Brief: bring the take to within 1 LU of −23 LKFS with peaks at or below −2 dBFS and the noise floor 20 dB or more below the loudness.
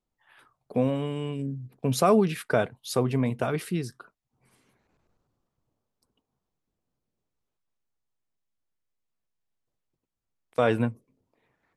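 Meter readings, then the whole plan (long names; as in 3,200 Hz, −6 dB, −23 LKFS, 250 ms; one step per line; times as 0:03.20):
integrated loudness −27.0 LKFS; sample peak −9.0 dBFS; target loudness −23.0 LKFS
→ level +4 dB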